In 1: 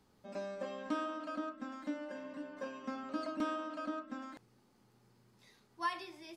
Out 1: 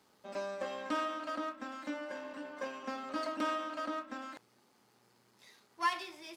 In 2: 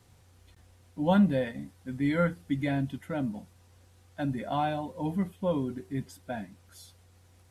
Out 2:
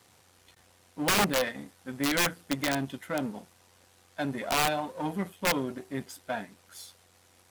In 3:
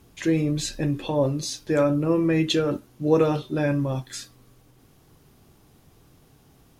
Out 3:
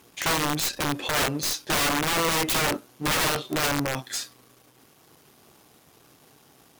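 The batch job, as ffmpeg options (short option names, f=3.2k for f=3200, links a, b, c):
-af "aeval=exprs='if(lt(val(0),0),0.447*val(0),val(0))':c=same,highpass=f=530:p=1,aeval=exprs='(mod(21.1*val(0)+1,2)-1)/21.1':c=same,volume=8dB"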